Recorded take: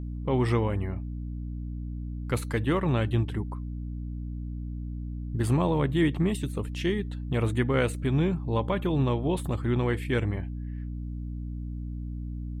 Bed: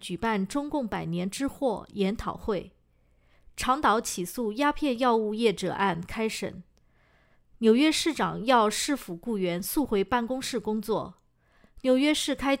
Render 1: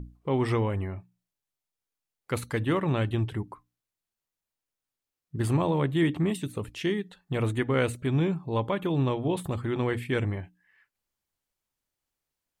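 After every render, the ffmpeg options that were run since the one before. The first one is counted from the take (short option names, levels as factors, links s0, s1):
-af "bandreject=f=60:t=h:w=6,bandreject=f=120:t=h:w=6,bandreject=f=180:t=h:w=6,bandreject=f=240:t=h:w=6,bandreject=f=300:t=h:w=6"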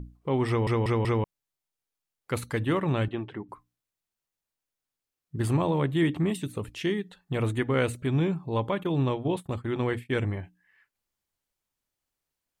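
-filter_complex "[0:a]asettb=1/sr,asplit=3[s0][s1][s2];[s0]atrim=end=3.084[s3];[s1]atrim=start=3.08:end=3.49,asetpts=PTS-STARTPTS,afade=t=in:d=0.004:c=qsin,afade=t=out:st=0.406:d=0.004:c=qsin,highpass=230,lowpass=2700[s4];[s2]atrim=start=3.486[s5];[s3][s4]acrossfade=d=0.004:c1=hsin:c2=qsin[s6];[s6][s5]acrossfade=d=0.004:c1=qsin:c2=hsin,asplit=3[s7][s8][s9];[s7]afade=t=out:st=8.82:d=0.02[s10];[s8]agate=range=0.0224:threshold=0.0355:ratio=3:release=100:detection=peak,afade=t=in:st=8.82:d=0.02,afade=t=out:st=10.22:d=0.02[s11];[s9]afade=t=in:st=10.22:d=0.02[s12];[s10][s11][s12]amix=inputs=3:normalize=0,asplit=5[s13][s14][s15][s16][s17];[s13]atrim=end=0.672[s18];[s14]atrim=start=0.478:end=0.672[s19];[s15]atrim=start=0.478:end=0.672[s20];[s16]atrim=start=0.478:end=0.672[s21];[s17]atrim=start=1.238[s22];[s18][s19]acrossfade=d=0.004:c1=hsin:c2=hsin[s23];[s23][s20]acrossfade=d=0.004:c1=hsin:c2=hsin[s24];[s24][s21]acrossfade=d=0.004:c1=hsin:c2=hsin[s25];[s25][s22]acrossfade=d=0.004:c1=hsin:c2=hsin"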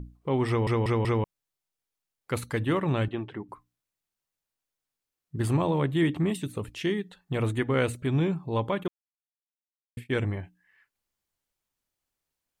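-filter_complex "[0:a]asplit=3[s0][s1][s2];[s0]atrim=end=8.88,asetpts=PTS-STARTPTS,afade=t=out:st=8.876:d=0.004:c=hsin[s3];[s1]atrim=start=8.88:end=9.97,asetpts=PTS-STARTPTS,volume=0[s4];[s2]atrim=start=9.97,asetpts=PTS-STARTPTS,afade=t=in:d=0.004:c=hsin[s5];[s3][s4][s5]concat=n=3:v=0:a=1"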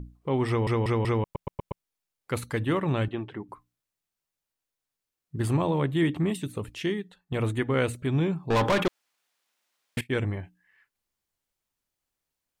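-filter_complex "[0:a]asettb=1/sr,asplit=3[s0][s1][s2];[s0]atrim=end=8.504[s3];[s1]atrim=start=8.5:end=10.01,asetpts=PTS-STARTPTS,afade=t=in:d=0.004:c=qsin,afade=t=out:st=1.506:d=0.004:c=qsin,asplit=2[s4][s5];[s5]highpass=f=720:p=1,volume=35.5,asoftclip=type=tanh:threshold=0.158[s6];[s4][s6]amix=inputs=2:normalize=0,lowpass=f=3700:p=1,volume=0.501[s7];[s2]atrim=start=10.006[s8];[s3][s7]acrossfade=d=0.004:c1=hsin:c2=qsin[s9];[s9][s8]acrossfade=d=0.004:c1=qsin:c2=hsin,asplit=7[s10][s11][s12][s13][s14][s15][s16];[s10]atrim=end=1.352[s17];[s11]atrim=start=1.228:end=1.352[s18];[s12]atrim=start=1.228:end=1.352[s19];[s13]atrim=start=1.228:end=1.352[s20];[s14]atrim=start=1.228:end=1.352[s21];[s15]atrim=start=1.828:end=7.32,asetpts=PTS-STARTPTS,afade=t=out:st=5.002:d=0.49:silence=0.375837[s22];[s16]atrim=start=7.32,asetpts=PTS-STARTPTS,afade=t=in:d=0.004:c=hsin:silence=0.375837[s23];[s17][s18]acrossfade=d=0.004:c1=hsin:c2=hsin[s24];[s24][s19]acrossfade=d=0.004:c1=hsin:c2=hsin[s25];[s25][s20]acrossfade=d=0.004:c1=hsin:c2=hsin[s26];[s26][s21]acrossfade=d=0.004:c1=hsin:c2=hsin[s27];[s22][s23]concat=n=2:v=0:a=1[s28];[s27][s28]acrossfade=d=0.004:c1=hsin:c2=hsin"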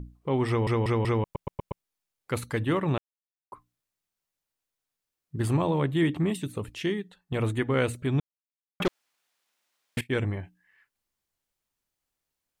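-filter_complex "[0:a]asplit=5[s0][s1][s2][s3][s4];[s0]atrim=end=2.98,asetpts=PTS-STARTPTS,afade=t=out:st=2.976:d=0.004:c=hsin[s5];[s1]atrim=start=2.98:end=3.52,asetpts=PTS-STARTPTS,volume=0[s6];[s2]atrim=start=3.52:end=8.2,asetpts=PTS-STARTPTS,afade=t=in:d=0.004:c=hsin,afade=t=out:st=4.676:d=0.004:c=hsin[s7];[s3]atrim=start=8.2:end=8.8,asetpts=PTS-STARTPTS,volume=0[s8];[s4]atrim=start=8.8,asetpts=PTS-STARTPTS,afade=t=in:d=0.004:c=hsin[s9];[s5][s6][s7][s8][s9]concat=n=5:v=0:a=1"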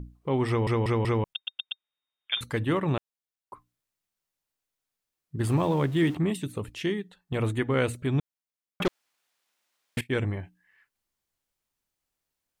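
-filter_complex "[0:a]asettb=1/sr,asplit=3[s0][s1][s2];[s0]atrim=end=1.334[s3];[s1]atrim=start=1.33:end=2.41,asetpts=PTS-STARTPTS,afade=t=in:d=0.004:c=qsin,afade=t=out:st=1.076:d=0.004:c=qsin,lowpass=f=3100:t=q:w=0.5098,lowpass=f=3100:t=q:w=0.6013,lowpass=f=3100:t=q:w=0.9,lowpass=f=3100:t=q:w=2.563,afreqshift=-3700[s4];[s2]atrim=start=2.406[s5];[s3][s4]acrossfade=d=0.004:c1=hsin:c2=qsin[s6];[s6][s5]acrossfade=d=0.004:c1=qsin:c2=hsin,asettb=1/sr,asplit=3[s7][s8][s9];[s7]atrim=end=5.484[s10];[s8]atrim=start=5.48:end=6.15,asetpts=PTS-STARTPTS,afade=t=in:d=0.004:c=qsin,afade=t=out:st=0.666:d=0.004:c=qsin,aeval=exprs='val(0)+0.5*0.00944*sgn(val(0))':c=same[s11];[s9]atrim=start=6.146[s12];[s10][s11]acrossfade=d=0.004:c1=hsin:c2=qsin[s13];[s13][s12]acrossfade=d=0.004:c1=qsin:c2=hsin"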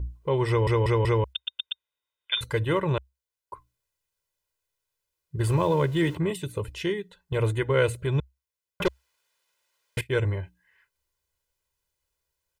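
-af "equalizer=f=65:t=o:w=0.36:g=10,aecho=1:1:2:0.79"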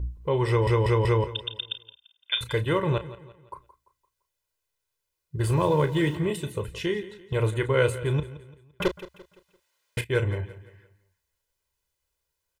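-filter_complex "[0:a]asplit=2[s0][s1];[s1]adelay=33,volume=0.282[s2];[s0][s2]amix=inputs=2:normalize=0,aecho=1:1:171|342|513|684:0.158|0.0634|0.0254|0.0101"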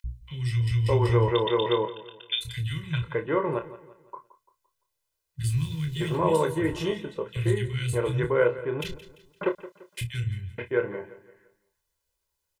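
-filter_complex "[0:a]asplit=2[s0][s1];[s1]adelay=25,volume=0.398[s2];[s0][s2]amix=inputs=2:normalize=0,acrossover=split=180|2200[s3][s4][s5];[s3]adelay=40[s6];[s4]adelay=610[s7];[s6][s7][s5]amix=inputs=3:normalize=0"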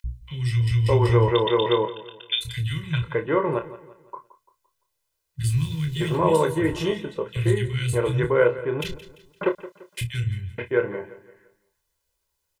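-af "volume=1.5"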